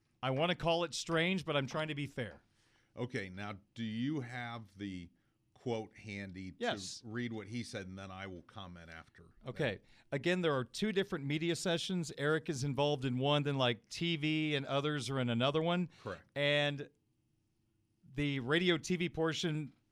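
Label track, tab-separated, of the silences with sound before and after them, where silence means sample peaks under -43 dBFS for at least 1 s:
16.840000	18.170000	silence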